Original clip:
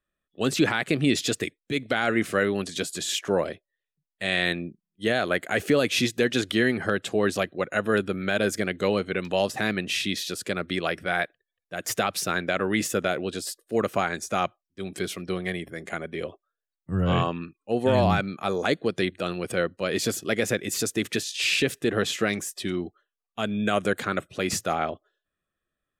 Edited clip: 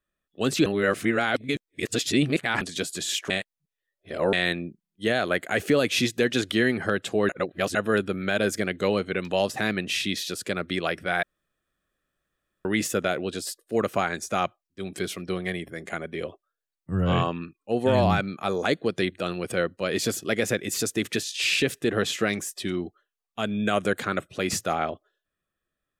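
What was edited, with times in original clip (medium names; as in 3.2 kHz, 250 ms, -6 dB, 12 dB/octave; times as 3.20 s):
0.66–2.61 s: reverse
3.30–4.33 s: reverse
7.29–7.75 s: reverse
11.23–12.65 s: room tone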